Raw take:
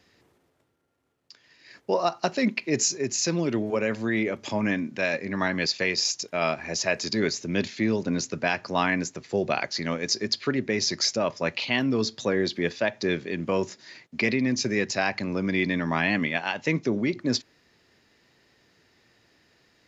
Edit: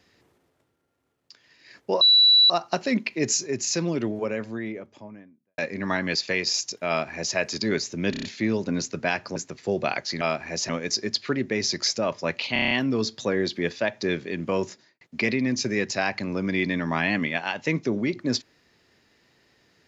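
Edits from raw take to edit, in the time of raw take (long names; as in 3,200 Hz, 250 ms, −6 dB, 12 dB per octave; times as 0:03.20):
0:02.01: insert tone 3,940 Hz −12.5 dBFS 0.49 s
0:03.22–0:05.09: fade out and dull
0:06.39–0:06.87: duplicate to 0:09.87
0:07.62: stutter 0.03 s, 5 plays
0:08.75–0:09.02: remove
0:11.71: stutter 0.03 s, 7 plays
0:13.69–0:14.01: fade out and dull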